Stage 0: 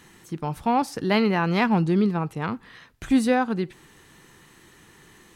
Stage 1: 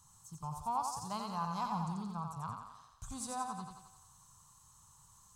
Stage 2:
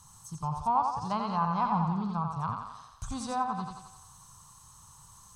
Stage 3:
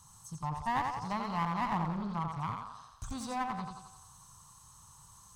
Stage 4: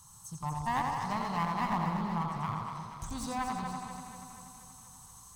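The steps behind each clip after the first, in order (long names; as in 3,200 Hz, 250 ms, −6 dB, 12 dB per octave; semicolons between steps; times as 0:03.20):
drawn EQ curve 120 Hz 0 dB, 350 Hz −30 dB, 1,100 Hz +1 dB, 1,900 Hz −29 dB, 7,400 Hz +6 dB, 11,000 Hz −3 dB; feedback echo with a high-pass in the loop 88 ms, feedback 59%, high-pass 280 Hz, level −4 dB; level −7 dB
notch filter 7,200 Hz, Q 8.8; treble cut that deepens with the level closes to 2,400 Hz, closed at −35 dBFS; level +9 dB
asymmetric clip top −34.5 dBFS; level −2.5 dB
high-shelf EQ 9,400 Hz +8.5 dB; delay that swaps between a low-pass and a high-pass 120 ms, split 870 Hz, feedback 78%, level −4.5 dB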